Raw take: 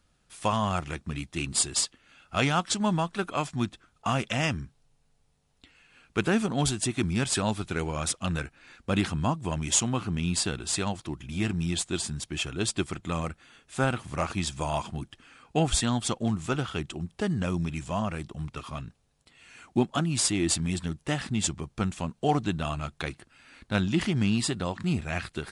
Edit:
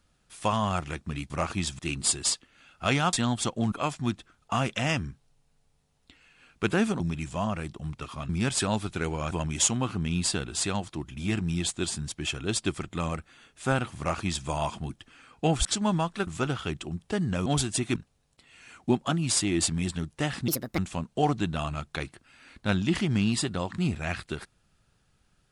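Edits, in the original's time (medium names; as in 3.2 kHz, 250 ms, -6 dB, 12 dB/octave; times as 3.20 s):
2.64–3.26 s: swap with 15.77–16.36 s
6.54–7.04 s: swap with 17.55–18.84 s
8.06–9.43 s: delete
14.10–14.59 s: copy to 1.30 s
21.36–21.84 s: speed 159%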